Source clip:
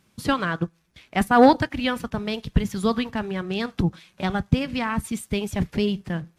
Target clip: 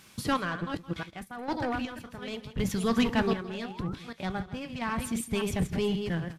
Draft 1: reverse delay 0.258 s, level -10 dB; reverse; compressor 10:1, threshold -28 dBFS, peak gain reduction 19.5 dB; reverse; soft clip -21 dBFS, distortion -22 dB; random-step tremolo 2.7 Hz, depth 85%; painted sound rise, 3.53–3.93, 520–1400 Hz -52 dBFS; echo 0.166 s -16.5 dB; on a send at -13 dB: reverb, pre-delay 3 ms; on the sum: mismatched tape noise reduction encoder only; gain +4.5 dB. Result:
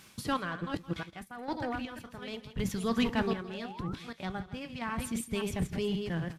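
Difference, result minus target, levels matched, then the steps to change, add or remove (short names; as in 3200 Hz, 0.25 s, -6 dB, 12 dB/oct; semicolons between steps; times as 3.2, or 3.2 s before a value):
compressor: peak gain reduction +5.5 dB
change: compressor 10:1, threshold -22 dBFS, peak gain reduction 14 dB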